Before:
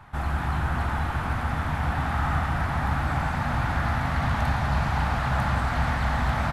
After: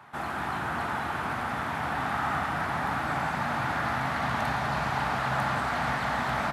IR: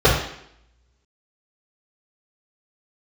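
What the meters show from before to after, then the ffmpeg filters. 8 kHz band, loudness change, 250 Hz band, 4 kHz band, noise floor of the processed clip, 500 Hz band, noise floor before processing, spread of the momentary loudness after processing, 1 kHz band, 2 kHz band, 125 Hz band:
0.0 dB, -3.0 dB, -4.0 dB, 0.0 dB, -33 dBFS, 0.0 dB, -29 dBFS, 3 LU, 0.0 dB, 0.0 dB, -10.5 dB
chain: -filter_complex "[0:a]highpass=240,asplit=2[a][b];[1:a]atrim=start_sample=2205,lowshelf=f=140:g=9.5[c];[b][c]afir=irnorm=-1:irlink=0,volume=-42.5dB[d];[a][d]amix=inputs=2:normalize=0"

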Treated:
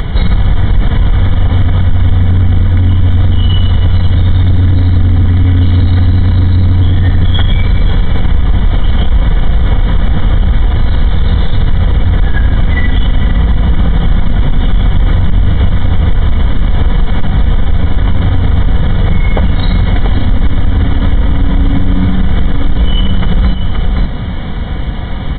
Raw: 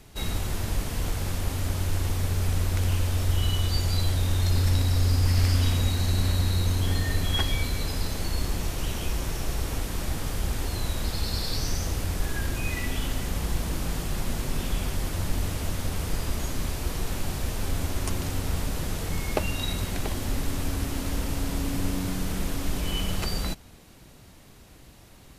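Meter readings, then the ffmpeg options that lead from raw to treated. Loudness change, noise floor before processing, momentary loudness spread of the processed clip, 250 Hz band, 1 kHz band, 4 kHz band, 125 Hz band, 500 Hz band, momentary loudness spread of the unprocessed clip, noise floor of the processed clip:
+16.5 dB, -50 dBFS, 4 LU, +16.5 dB, +13.0 dB, +8.5 dB, +17.5 dB, +12.0 dB, 7 LU, -14 dBFS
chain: -af "lowshelf=f=200:t=q:w=1.5:g=7,acompressor=mode=upward:threshold=-40dB:ratio=2.5,aecho=1:1:520:0.2,flanger=delay=2:depth=2.2:regen=-84:speed=0.26:shape=sinusoidal,aresample=8000,asoftclip=type=tanh:threshold=-18.5dB,aresample=44100,aecho=1:1:4.1:0.36,acompressor=threshold=-38dB:ratio=2.5,asuperstop=centerf=2600:order=12:qfactor=4.9,alimiter=level_in=33.5dB:limit=-1dB:release=50:level=0:latency=1,volume=-1dB"

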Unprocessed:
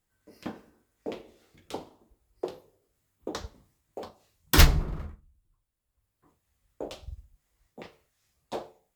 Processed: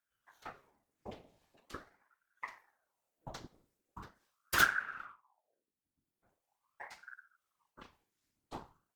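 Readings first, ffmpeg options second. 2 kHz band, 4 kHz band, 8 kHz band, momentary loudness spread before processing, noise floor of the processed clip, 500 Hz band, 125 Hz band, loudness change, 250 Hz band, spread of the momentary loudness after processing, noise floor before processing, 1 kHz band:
+0.5 dB, -11.0 dB, -9.5 dB, 25 LU, under -85 dBFS, -15.5 dB, -24.5 dB, -4.5 dB, -17.0 dB, 24 LU, -80 dBFS, -3.0 dB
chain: -af "afftfilt=real='hypot(re,im)*cos(2*PI*random(0))':imag='hypot(re,im)*sin(2*PI*random(1))':win_size=512:overlap=0.75,acontrast=46,aeval=exprs='val(0)*sin(2*PI*850*n/s+850*0.8/0.42*sin(2*PI*0.42*n/s))':c=same,volume=-7.5dB"

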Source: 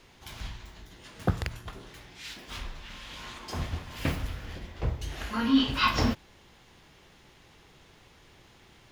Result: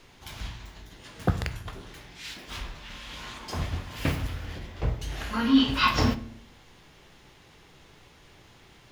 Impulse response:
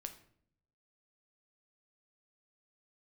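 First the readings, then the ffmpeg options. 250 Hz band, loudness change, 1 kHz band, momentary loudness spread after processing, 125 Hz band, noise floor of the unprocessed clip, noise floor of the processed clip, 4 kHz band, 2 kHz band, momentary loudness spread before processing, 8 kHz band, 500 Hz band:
+2.5 dB, +2.5 dB, +2.0 dB, 22 LU, +2.5 dB, -57 dBFS, -55 dBFS, +2.0 dB, +2.0 dB, 21 LU, +2.0 dB, +2.0 dB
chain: -filter_complex "[0:a]asplit=2[a][b];[1:a]atrim=start_sample=2205[c];[b][c]afir=irnorm=-1:irlink=0,volume=7dB[d];[a][d]amix=inputs=2:normalize=0,volume=-5.5dB"

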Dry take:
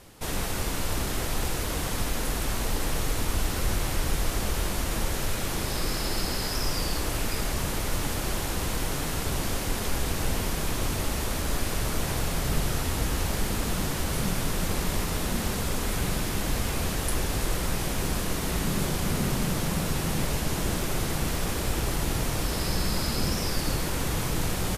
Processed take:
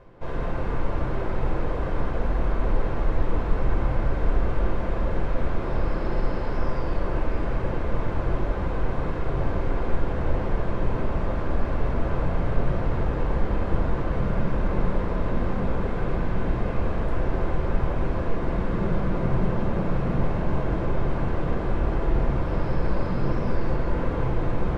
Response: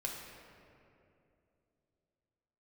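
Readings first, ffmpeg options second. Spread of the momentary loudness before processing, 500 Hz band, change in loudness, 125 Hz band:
2 LU, +4.5 dB, +1.0 dB, +3.5 dB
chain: -filter_complex "[0:a]lowpass=1.3k,equalizer=f=130:t=o:w=0.8:g=-3,areverse,acompressor=mode=upward:threshold=-38dB:ratio=2.5,areverse[a];[1:a]atrim=start_sample=2205[b];[a][b]afir=irnorm=-1:irlink=0,volume=2.5dB"

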